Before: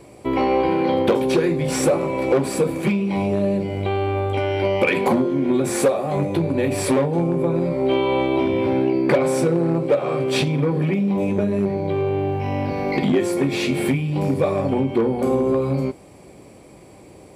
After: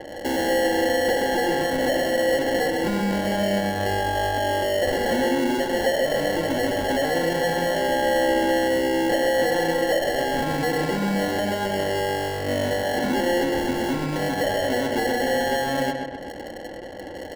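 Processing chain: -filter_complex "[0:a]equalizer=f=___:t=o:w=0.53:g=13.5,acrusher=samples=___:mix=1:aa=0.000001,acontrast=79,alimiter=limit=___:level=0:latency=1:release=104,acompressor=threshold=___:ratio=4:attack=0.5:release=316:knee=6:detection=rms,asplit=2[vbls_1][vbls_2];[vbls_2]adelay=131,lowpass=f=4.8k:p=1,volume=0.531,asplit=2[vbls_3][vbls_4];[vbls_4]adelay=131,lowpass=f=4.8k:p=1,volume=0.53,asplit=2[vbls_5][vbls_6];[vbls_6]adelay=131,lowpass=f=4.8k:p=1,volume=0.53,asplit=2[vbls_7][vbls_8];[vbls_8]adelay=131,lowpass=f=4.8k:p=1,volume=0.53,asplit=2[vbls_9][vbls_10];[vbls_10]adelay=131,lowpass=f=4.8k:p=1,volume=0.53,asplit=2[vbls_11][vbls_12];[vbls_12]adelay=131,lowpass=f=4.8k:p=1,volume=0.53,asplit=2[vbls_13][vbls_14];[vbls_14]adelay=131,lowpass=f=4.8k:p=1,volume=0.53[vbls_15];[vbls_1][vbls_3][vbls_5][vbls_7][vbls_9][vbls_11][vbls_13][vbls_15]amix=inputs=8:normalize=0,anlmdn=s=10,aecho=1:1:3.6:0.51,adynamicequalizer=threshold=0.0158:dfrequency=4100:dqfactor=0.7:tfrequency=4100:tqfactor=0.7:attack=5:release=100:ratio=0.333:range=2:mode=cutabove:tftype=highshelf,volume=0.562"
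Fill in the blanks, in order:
500, 36, 0.376, 0.141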